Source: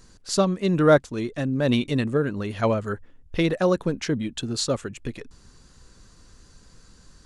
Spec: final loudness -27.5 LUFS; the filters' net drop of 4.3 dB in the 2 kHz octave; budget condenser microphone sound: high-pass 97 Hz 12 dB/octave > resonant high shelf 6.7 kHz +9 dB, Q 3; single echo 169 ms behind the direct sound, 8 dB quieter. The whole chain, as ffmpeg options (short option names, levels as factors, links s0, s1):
-af "highpass=97,equalizer=f=2000:t=o:g=-5,highshelf=f=6700:t=q:w=3:g=9,aecho=1:1:169:0.398,volume=0.631"